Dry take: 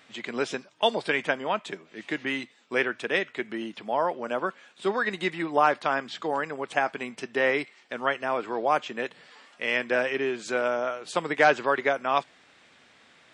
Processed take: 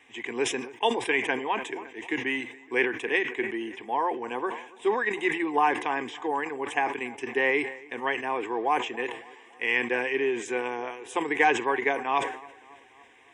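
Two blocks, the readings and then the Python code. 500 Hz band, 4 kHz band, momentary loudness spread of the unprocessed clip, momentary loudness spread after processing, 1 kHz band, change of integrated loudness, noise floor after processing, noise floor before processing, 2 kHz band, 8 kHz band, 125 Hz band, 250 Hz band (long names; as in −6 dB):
−1.5 dB, −1.5 dB, 10 LU, 9 LU, 0.0 dB, −0.5 dB, −53 dBFS, −58 dBFS, +0.5 dB, +4.0 dB, −6.0 dB, +1.0 dB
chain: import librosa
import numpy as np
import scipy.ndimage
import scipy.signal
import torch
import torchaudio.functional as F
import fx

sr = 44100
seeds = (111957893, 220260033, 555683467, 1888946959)

y = fx.fixed_phaser(x, sr, hz=900.0, stages=8)
y = fx.wow_flutter(y, sr, seeds[0], rate_hz=2.1, depth_cents=17.0)
y = fx.echo_bbd(y, sr, ms=280, stages=4096, feedback_pct=57, wet_db=-22.0)
y = fx.sustainer(y, sr, db_per_s=96.0)
y = y * librosa.db_to_amplitude(2.0)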